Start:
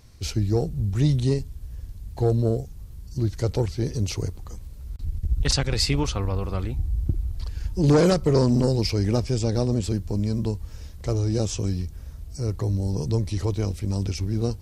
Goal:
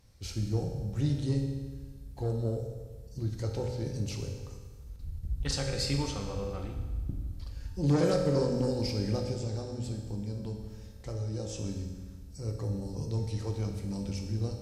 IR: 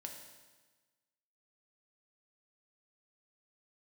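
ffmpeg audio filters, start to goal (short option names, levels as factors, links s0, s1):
-filter_complex "[0:a]asettb=1/sr,asplit=3[s0][s1][s2];[s0]atrim=end=9.324[s3];[s1]atrim=start=9.32:end=11.55,asetpts=PTS-STARTPTS,afade=t=in:d=0.004:c=qsin,afade=t=out:st=2.226:d=0.004:c=qsin,acompressor=threshold=0.0562:ratio=2.5[s4];[s2]atrim=start=11.546[s5];[s3][s4]acrossfade=d=0.004:c1=hsin:c2=qsin[s6];[s6][s5]acrossfade=d=0.004:c1=qsin:c2=hsin[s7];[1:a]atrim=start_sample=2205,asetrate=39690,aresample=44100[s8];[s7][s8]afir=irnorm=-1:irlink=0,volume=0.531"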